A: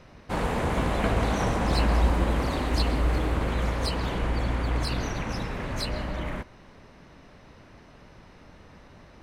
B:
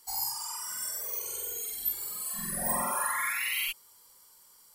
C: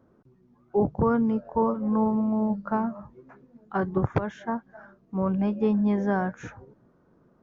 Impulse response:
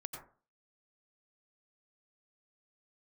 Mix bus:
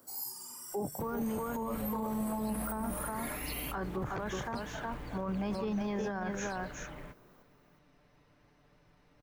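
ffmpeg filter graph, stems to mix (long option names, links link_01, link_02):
-filter_complex "[0:a]aecho=1:1:6.8:0.6,acrusher=bits=6:mode=log:mix=0:aa=0.000001,adelay=700,volume=-16dB[link_01];[1:a]highshelf=frequency=6200:gain=9.5,volume=-15dB[link_02];[2:a]aemphasis=mode=production:type=riaa,volume=2dB,asplit=2[link_03][link_04];[link_04]volume=-6.5dB,aecho=0:1:365:1[link_05];[link_01][link_02][link_03][link_05]amix=inputs=4:normalize=0,acrossover=split=210[link_06][link_07];[link_07]acompressor=threshold=-30dB:ratio=3[link_08];[link_06][link_08]amix=inputs=2:normalize=0,alimiter=level_in=3.5dB:limit=-24dB:level=0:latency=1:release=12,volume=-3.5dB"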